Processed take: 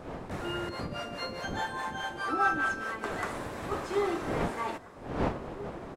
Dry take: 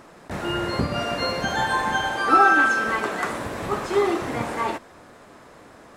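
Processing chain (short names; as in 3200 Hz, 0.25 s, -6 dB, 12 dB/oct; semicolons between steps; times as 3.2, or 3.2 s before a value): wind noise 620 Hz -31 dBFS; 0.69–3.04 harmonic tremolo 4.8 Hz, depth 70%, crossover 460 Hz; outdoor echo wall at 280 m, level -14 dB; gain -8.5 dB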